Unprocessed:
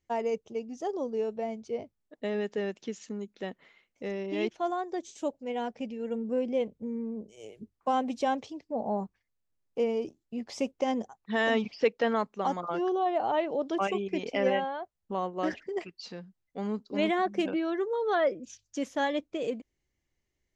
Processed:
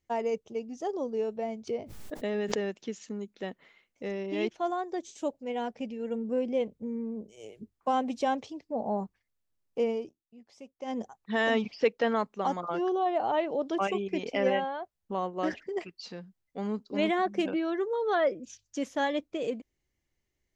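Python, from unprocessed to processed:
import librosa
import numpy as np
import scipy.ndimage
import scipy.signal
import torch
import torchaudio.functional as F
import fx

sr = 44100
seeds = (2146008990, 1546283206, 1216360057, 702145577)

y = fx.pre_swell(x, sr, db_per_s=40.0, at=(1.67, 2.68), fade=0.02)
y = fx.edit(y, sr, fx.fade_down_up(start_s=9.9, length_s=1.14, db=-17.5, fade_s=0.25), tone=tone)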